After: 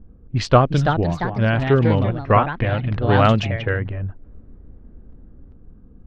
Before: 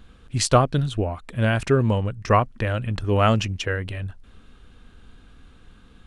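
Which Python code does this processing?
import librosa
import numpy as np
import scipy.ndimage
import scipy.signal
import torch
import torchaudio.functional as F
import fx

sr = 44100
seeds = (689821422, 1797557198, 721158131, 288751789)

p1 = fx.env_lowpass(x, sr, base_hz=390.0, full_db=-16.5)
p2 = fx.high_shelf(p1, sr, hz=7500.0, db=6.5)
p3 = fx.rider(p2, sr, range_db=4, speed_s=2.0)
p4 = p2 + F.gain(torch.from_numpy(p3), 3.0).numpy()
p5 = fx.echo_pitch(p4, sr, ms=418, semitones=3, count=2, db_per_echo=-6.0)
p6 = fx.air_absorb(p5, sr, metres=190.0)
y = F.gain(torch.from_numpy(p6), -5.0).numpy()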